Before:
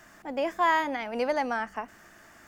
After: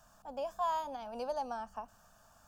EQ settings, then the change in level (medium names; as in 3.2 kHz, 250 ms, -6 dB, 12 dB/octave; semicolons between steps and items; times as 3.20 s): dynamic bell 1.5 kHz, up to -5 dB, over -36 dBFS, Q 1.2; bass shelf 65 Hz +8.5 dB; static phaser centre 840 Hz, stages 4; -6.0 dB